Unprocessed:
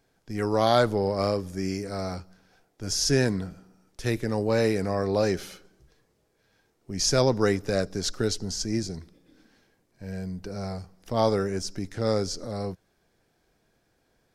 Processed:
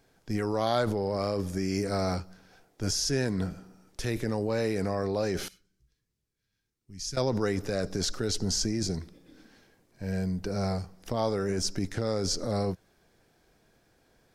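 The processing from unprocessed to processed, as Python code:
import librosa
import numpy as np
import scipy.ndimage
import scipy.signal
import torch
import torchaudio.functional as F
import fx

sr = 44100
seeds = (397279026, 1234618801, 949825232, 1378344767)

p1 = fx.tone_stack(x, sr, knobs='6-0-2', at=(5.48, 7.17))
p2 = fx.over_compress(p1, sr, threshold_db=-31.0, ratio=-0.5)
p3 = p1 + (p2 * librosa.db_to_amplitude(2.0))
y = p3 * librosa.db_to_amplitude(-6.5)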